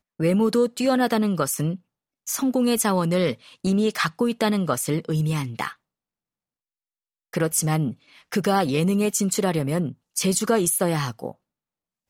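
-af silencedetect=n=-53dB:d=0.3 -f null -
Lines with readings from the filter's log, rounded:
silence_start: 1.80
silence_end: 2.27 | silence_duration: 0.46
silence_start: 5.76
silence_end: 7.33 | silence_duration: 1.58
silence_start: 11.35
silence_end: 12.09 | silence_duration: 0.74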